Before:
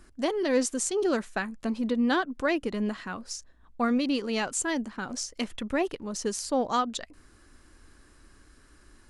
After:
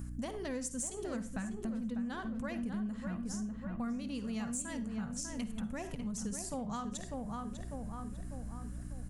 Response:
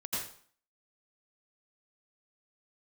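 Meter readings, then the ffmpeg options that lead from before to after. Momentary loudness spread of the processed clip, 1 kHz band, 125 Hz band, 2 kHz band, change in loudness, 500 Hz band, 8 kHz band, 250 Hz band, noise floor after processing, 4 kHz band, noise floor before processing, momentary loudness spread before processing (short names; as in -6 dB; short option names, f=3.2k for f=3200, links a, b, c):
6 LU, -13.0 dB, +3.0 dB, -14.5 dB, -10.5 dB, -14.5 dB, -7.5 dB, -7.5 dB, -45 dBFS, -14.5 dB, -58 dBFS, 9 LU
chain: -filter_complex "[0:a]lowshelf=f=240:t=q:w=3:g=10.5,asplit=2[a][b];[b]adelay=597,lowpass=f=1.8k:p=1,volume=-6dB,asplit=2[c][d];[d]adelay=597,lowpass=f=1.8k:p=1,volume=0.48,asplit=2[e][f];[f]adelay=597,lowpass=f=1.8k:p=1,volume=0.48,asplit=2[g][h];[h]adelay=597,lowpass=f=1.8k:p=1,volume=0.48,asplit=2[i][j];[j]adelay=597,lowpass=f=1.8k:p=1,volume=0.48,asplit=2[k][l];[l]adelay=597,lowpass=f=1.8k:p=1,volume=0.48[m];[a][c][e][g][i][k][m]amix=inputs=7:normalize=0,asplit=2[n][o];[1:a]atrim=start_sample=2205,asetrate=74970,aresample=44100[p];[o][p]afir=irnorm=-1:irlink=0,volume=-9.5dB[q];[n][q]amix=inputs=2:normalize=0,aexciter=amount=2.7:drive=6.6:freq=6.4k,equalizer=f=3.9k:t=o:w=2.1:g=-2.5,aeval=exprs='val(0)+0.0126*(sin(2*PI*60*n/s)+sin(2*PI*2*60*n/s)/2+sin(2*PI*3*60*n/s)/3+sin(2*PI*4*60*n/s)/4+sin(2*PI*5*60*n/s)/5)':c=same,acompressor=threshold=-37dB:ratio=4,volume=-1.5dB"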